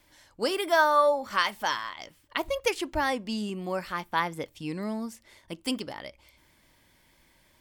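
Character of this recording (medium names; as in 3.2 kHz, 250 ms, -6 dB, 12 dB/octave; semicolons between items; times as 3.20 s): noise floor -64 dBFS; spectral tilt -3.5 dB/octave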